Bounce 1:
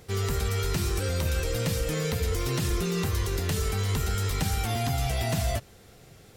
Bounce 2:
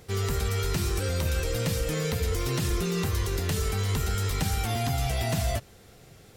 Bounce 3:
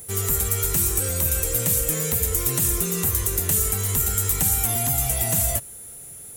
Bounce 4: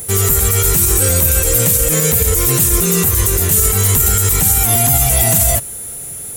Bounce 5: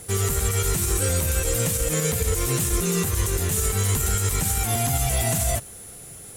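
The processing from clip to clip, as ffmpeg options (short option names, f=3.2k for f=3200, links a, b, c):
-af anull
-af "aexciter=amount=11.1:drive=1.1:freq=6.9k,aeval=exprs='val(0)+0.0112*sin(2*PI*10000*n/s)':c=same"
-af "alimiter=level_in=13.5dB:limit=-1dB:release=50:level=0:latency=1,volume=-1dB"
-af "adynamicsmooth=sensitivity=5:basefreq=5.2k,volume=-7.5dB"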